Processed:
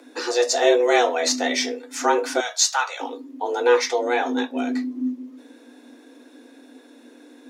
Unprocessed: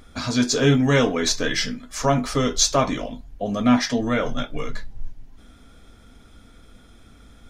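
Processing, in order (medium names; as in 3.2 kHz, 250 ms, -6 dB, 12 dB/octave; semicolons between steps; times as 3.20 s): 2.40–3.00 s: high-pass 680 Hz 12 dB/octave; frequency shift +240 Hz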